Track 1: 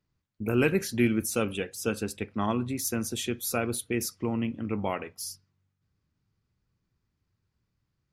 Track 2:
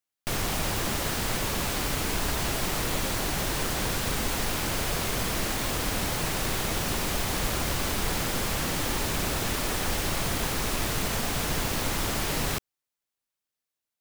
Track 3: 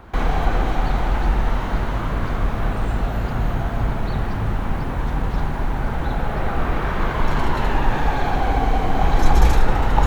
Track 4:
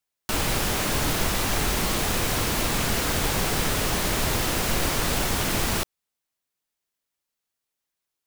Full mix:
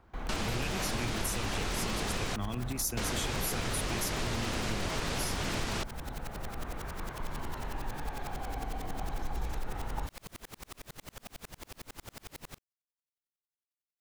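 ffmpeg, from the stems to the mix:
-filter_complex "[0:a]acrossover=split=120|3000[a][b][c];[b]acompressor=threshold=-40dB:ratio=6[d];[a][d][c]amix=inputs=3:normalize=0,volume=3dB[e];[1:a]alimiter=level_in=0.5dB:limit=-24dB:level=0:latency=1:release=13,volume=-0.5dB,aeval=exprs='val(0)*pow(10,-39*if(lt(mod(-11*n/s,1),2*abs(-11)/1000),1-mod(-11*n/s,1)/(2*abs(-11)/1000),(mod(-11*n/s,1)-2*abs(-11)/1000)/(1-2*abs(-11)/1000))/20)':c=same,volume=-5.5dB[f];[2:a]volume=-18.5dB[g];[3:a]lowpass=6.7k,volume=-4dB,asplit=3[h][i][j];[h]atrim=end=2.36,asetpts=PTS-STARTPTS,afade=t=out:st=2.356:d=0.004:c=hsin[k];[i]atrim=start=2.36:end=2.97,asetpts=PTS-STARTPTS,volume=0[l];[j]atrim=start=2.97,asetpts=PTS-STARTPTS,afade=t=in:d=0.004:c=hsin[m];[k][l][m]concat=n=3:v=0:a=1[n];[e][f][g][n]amix=inputs=4:normalize=0,acompressor=threshold=-29dB:ratio=6"

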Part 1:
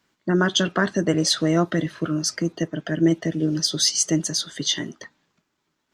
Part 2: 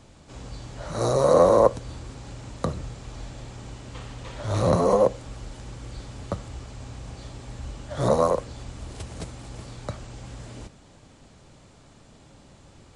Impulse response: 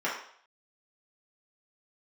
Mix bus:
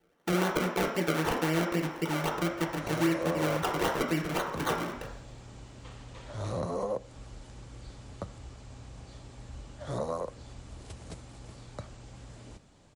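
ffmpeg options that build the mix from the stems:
-filter_complex "[0:a]acrusher=samples=34:mix=1:aa=0.000001:lfo=1:lforange=34:lforate=3.8,volume=-2.5dB,asplit=2[a][b];[b]volume=-5.5dB[c];[1:a]adelay=1900,volume=-8dB[d];[2:a]atrim=start_sample=2205[e];[c][e]afir=irnorm=-1:irlink=0[f];[a][d][f]amix=inputs=3:normalize=0,acompressor=threshold=-33dB:ratio=2"

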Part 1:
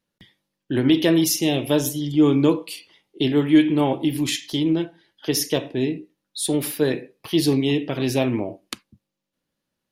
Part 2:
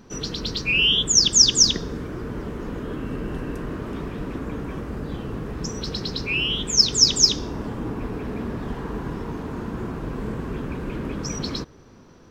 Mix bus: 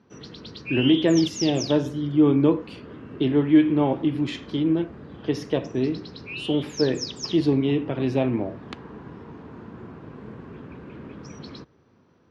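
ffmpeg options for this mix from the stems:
-filter_complex "[0:a]highshelf=f=2.3k:g=-9.5,volume=-1dB[a];[1:a]volume=-10dB[b];[a][b]amix=inputs=2:normalize=0,highpass=f=75:w=0.5412,highpass=f=75:w=1.3066,lowpass=3.8k"

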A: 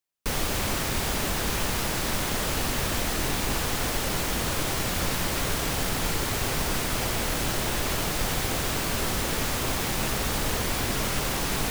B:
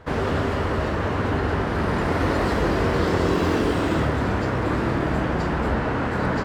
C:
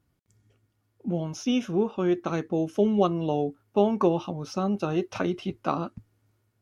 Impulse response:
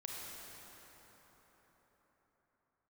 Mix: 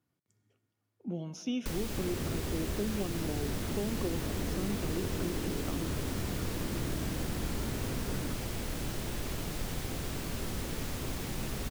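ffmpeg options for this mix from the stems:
-filter_complex "[0:a]adelay=1400,volume=-5.5dB[a];[1:a]adelay=1900,volume=-11.5dB[b];[2:a]highpass=130,volume=-7.5dB,asplit=2[c][d];[d]volume=-13dB[e];[3:a]atrim=start_sample=2205[f];[e][f]afir=irnorm=-1:irlink=0[g];[a][b][c][g]amix=inputs=4:normalize=0,acrossover=split=440|1700[h][i][j];[h]acompressor=threshold=-30dB:ratio=4[k];[i]acompressor=threshold=-50dB:ratio=4[l];[j]acompressor=threshold=-43dB:ratio=4[m];[k][l][m]amix=inputs=3:normalize=0"

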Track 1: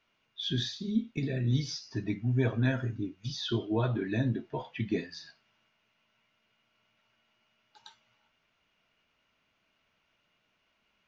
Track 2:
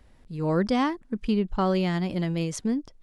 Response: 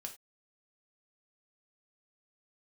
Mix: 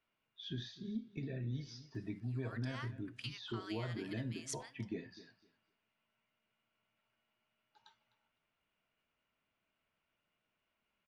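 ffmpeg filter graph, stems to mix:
-filter_complex "[0:a]lowpass=f=2.6k:p=1,volume=-9dB,asplit=3[a][b][c];[b]volume=-19.5dB[d];[1:a]highpass=f=1.3k:w=0.5412,highpass=f=1.3k:w=1.3066,adelay=1950,volume=-1dB,asplit=2[e][f];[f]volume=-15.5dB[g];[c]apad=whole_len=219231[h];[e][h]sidechaincompress=threshold=-48dB:ratio=8:attack=16:release=390[i];[2:a]atrim=start_sample=2205[j];[g][j]afir=irnorm=-1:irlink=0[k];[d]aecho=0:1:254|508|762:1|0.18|0.0324[l];[a][i][k][l]amix=inputs=4:normalize=0,acompressor=threshold=-37dB:ratio=3"

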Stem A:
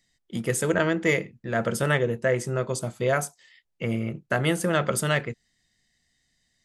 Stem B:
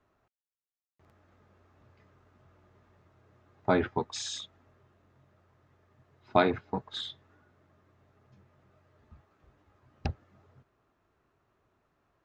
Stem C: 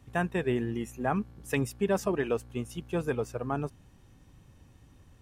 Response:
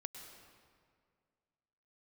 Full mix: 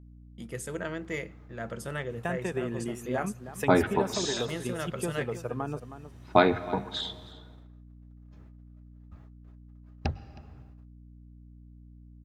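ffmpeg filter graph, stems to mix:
-filter_complex "[0:a]adelay=50,volume=-12.5dB,asplit=2[a][b];[b]volume=-21dB[c];[1:a]bandreject=f=50:t=h:w=6,bandreject=f=100:t=h:w=6,bandreject=f=150:t=h:w=6,bandreject=f=200:t=h:w=6,volume=1dB,asplit=4[d][e][f][g];[e]volume=-5.5dB[h];[f]volume=-17.5dB[i];[2:a]highpass=85,acompressor=threshold=-31dB:ratio=6,adelay=2100,volume=2dB,asplit=2[j][k];[k]volume=-12dB[l];[g]apad=whole_len=295238[m];[a][m]sidechaincompress=threshold=-39dB:ratio=8:attack=16:release=243[n];[3:a]atrim=start_sample=2205[o];[c][h]amix=inputs=2:normalize=0[p];[p][o]afir=irnorm=-1:irlink=0[q];[i][l]amix=inputs=2:normalize=0,aecho=0:1:316:1[r];[n][d][j][q][r]amix=inputs=5:normalize=0,agate=range=-29dB:threshold=-58dB:ratio=16:detection=peak,aeval=exprs='val(0)+0.00355*(sin(2*PI*60*n/s)+sin(2*PI*2*60*n/s)/2+sin(2*PI*3*60*n/s)/3+sin(2*PI*4*60*n/s)/4+sin(2*PI*5*60*n/s)/5)':c=same"

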